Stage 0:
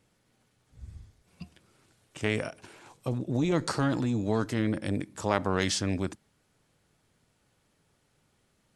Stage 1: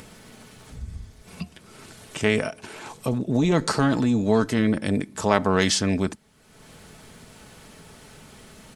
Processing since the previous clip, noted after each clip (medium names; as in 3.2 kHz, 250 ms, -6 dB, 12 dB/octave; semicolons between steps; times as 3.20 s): comb 4.6 ms, depth 34%; in parallel at +1 dB: upward compressor, threshold -30 dBFS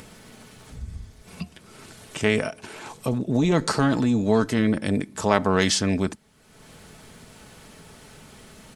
no audible change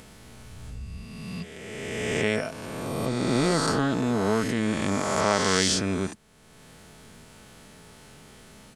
reverse spectral sustain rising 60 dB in 2.26 s; trim -6 dB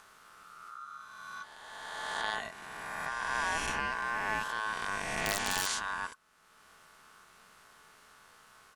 integer overflow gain 10 dB; ring modulator 1.3 kHz; trim -6.5 dB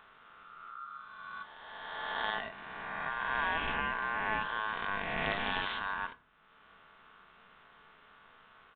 resampled via 8 kHz; on a send at -13 dB: reverberation RT60 0.45 s, pre-delay 4 ms